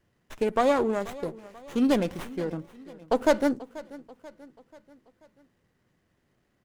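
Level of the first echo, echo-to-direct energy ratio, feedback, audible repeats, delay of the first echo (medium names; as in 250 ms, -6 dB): -19.0 dB, -18.0 dB, 50%, 3, 486 ms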